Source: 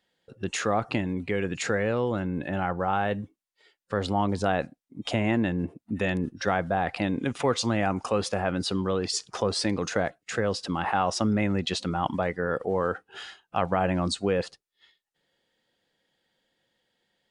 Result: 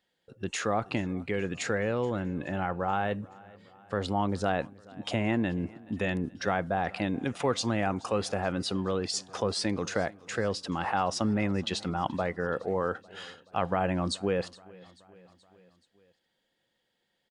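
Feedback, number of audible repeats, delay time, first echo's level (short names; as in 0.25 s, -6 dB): 59%, 3, 0.427 s, -23.0 dB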